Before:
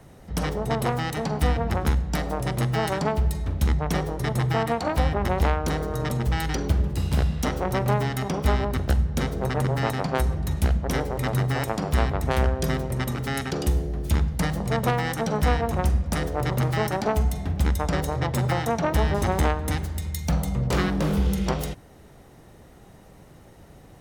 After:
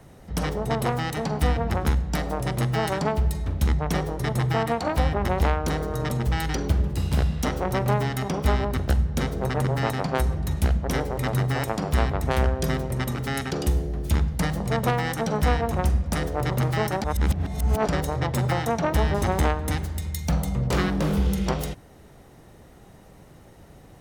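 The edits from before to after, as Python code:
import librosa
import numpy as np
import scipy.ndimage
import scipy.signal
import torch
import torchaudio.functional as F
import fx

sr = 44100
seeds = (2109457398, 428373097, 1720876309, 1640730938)

y = fx.edit(x, sr, fx.reverse_span(start_s=17.04, length_s=0.84), tone=tone)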